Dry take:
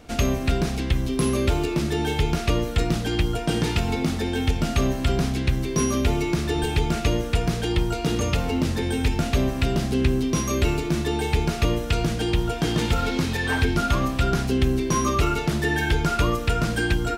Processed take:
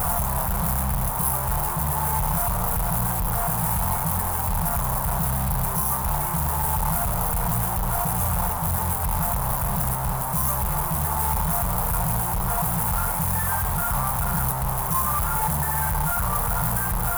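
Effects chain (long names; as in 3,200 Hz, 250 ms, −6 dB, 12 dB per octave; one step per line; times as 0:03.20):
sign of each sample alone
drawn EQ curve 190 Hz 0 dB, 270 Hz −27 dB, 920 Hz +6 dB, 4,200 Hz −29 dB, 11,000 Hz +8 dB
floating-point word with a short mantissa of 2 bits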